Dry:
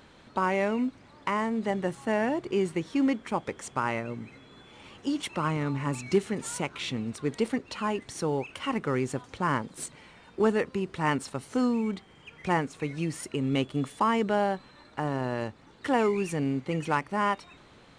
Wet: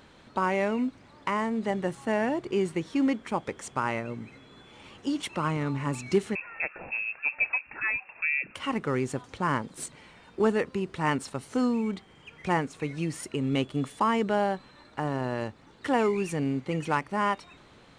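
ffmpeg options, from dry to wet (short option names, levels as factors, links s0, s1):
-filter_complex "[0:a]asettb=1/sr,asplit=3[s0][s1][s2];[s0]atrim=end=6.354[s3];[s1]atrim=start=6.35:end=8.55,asetpts=PTS-STARTPTS,afade=t=in:d=0.004:c=qsin,afade=t=out:st=2.196:d=0.004:c=qsin,lowpass=f=2400:t=q:w=0.5098,lowpass=f=2400:t=q:w=0.6013,lowpass=f=2400:t=q:w=0.9,lowpass=f=2400:t=q:w=2.563,afreqshift=-2800[s4];[s2]atrim=start=8.546[s5];[s3][s4]acrossfade=d=0.004:c1=hsin:c2=qsin[s6];[s6][s5]acrossfade=d=0.004:c1=qsin:c2=hsin"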